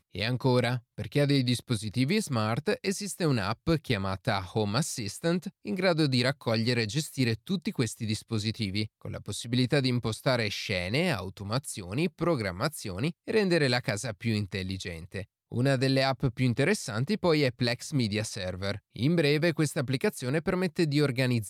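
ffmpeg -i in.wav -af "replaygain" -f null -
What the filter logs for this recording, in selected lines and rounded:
track_gain = +8.7 dB
track_peak = 0.161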